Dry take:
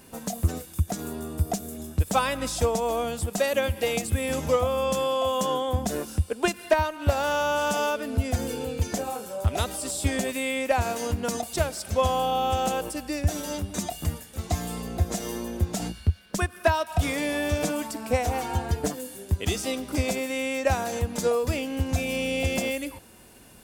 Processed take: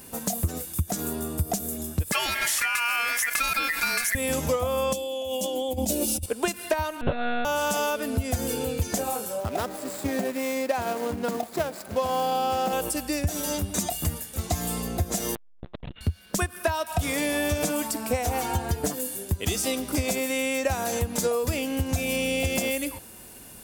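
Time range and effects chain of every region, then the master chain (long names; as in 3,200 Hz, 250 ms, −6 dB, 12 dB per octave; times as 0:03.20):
0:02.12–0:04.15: high-pass filter 67 Hz + ring modulation 1,900 Hz + envelope flattener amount 50%
0:04.93–0:06.26: flat-topped bell 1,400 Hz −15.5 dB 1.2 octaves + comb filter 3.5 ms, depth 81% + compressor whose output falls as the input rises −31 dBFS
0:07.01–0:07.45: one-pitch LPC vocoder at 8 kHz 240 Hz + double-tracking delay 13 ms −3 dB + one half of a high-frequency compander decoder only
0:09.40–0:12.73: running median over 15 samples + high-pass filter 170 Hz
0:15.35–0:16.01: high-pass filter 170 Hz + linear-prediction vocoder at 8 kHz pitch kept + saturating transformer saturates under 360 Hz
whole clip: high-shelf EQ 8,300 Hz +10.5 dB; downward compressor, threshold −24 dBFS; level +2.5 dB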